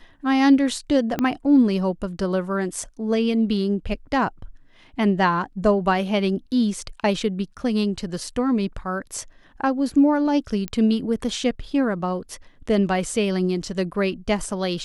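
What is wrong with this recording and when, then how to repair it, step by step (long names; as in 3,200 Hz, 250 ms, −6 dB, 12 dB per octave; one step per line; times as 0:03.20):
0:01.19: click −10 dBFS
0:10.68: click −14 dBFS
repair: click removal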